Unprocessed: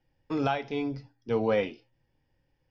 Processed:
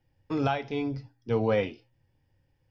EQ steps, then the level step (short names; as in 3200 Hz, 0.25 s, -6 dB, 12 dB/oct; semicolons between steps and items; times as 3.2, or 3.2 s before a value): bell 95 Hz +9 dB 0.85 oct; 0.0 dB